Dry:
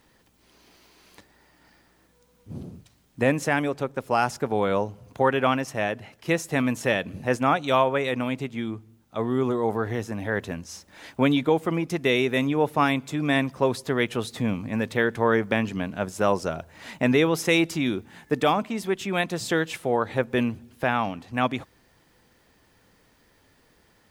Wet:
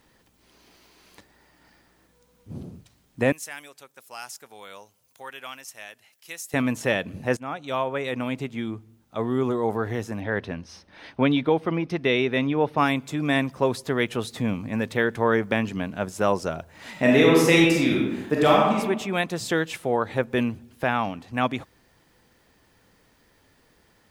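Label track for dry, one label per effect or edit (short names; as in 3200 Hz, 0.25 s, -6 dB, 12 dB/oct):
3.320000	6.540000	pre-emphasis coefficient 0.97
7.370000	8.400000	fade in, from -15.5 dB
10.200000	12.780000	polynomial smoothing over 15 samples
16.910000	18.770000	reverb throw, RT60 1 s, DRR -3 dB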